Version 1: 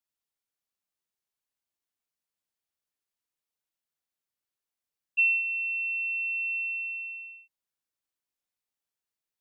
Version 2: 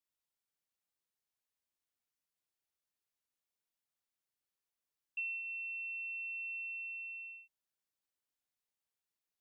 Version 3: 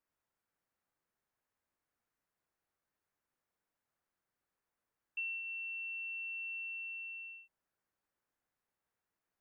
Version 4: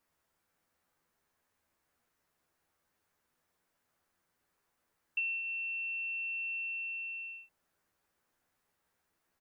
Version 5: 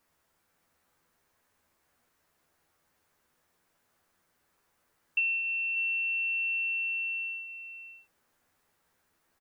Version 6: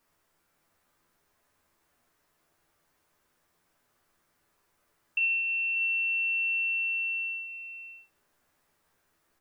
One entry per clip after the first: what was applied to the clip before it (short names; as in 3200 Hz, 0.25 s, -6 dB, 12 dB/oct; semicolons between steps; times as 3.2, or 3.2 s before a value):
compressor 2.5:1, threshold -42 dBFS, peak gain reduction 14 dB; gain -3 dB
EQ curve 1600 Hz 0 dB, 2300 Hz -6 dB, 3300 Hz -13 dB; gain +9 dB
doubler 12 ms -5 dB; gain +8 dB
echo 0.584 s -9.5 dB; gain +6 dB
shoebox room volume 58 m³, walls mixed, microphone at 0.35 m